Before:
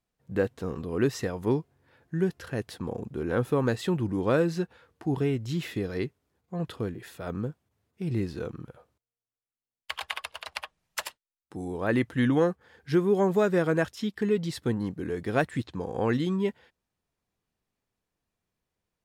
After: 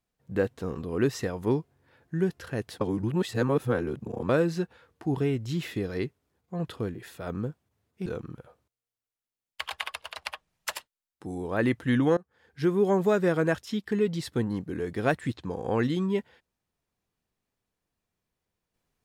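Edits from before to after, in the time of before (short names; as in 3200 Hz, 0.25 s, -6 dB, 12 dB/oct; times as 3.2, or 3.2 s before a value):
2.81–4.29 reverse
8.06–8.36 cut
12.47–13.07 fade in, from -23 dB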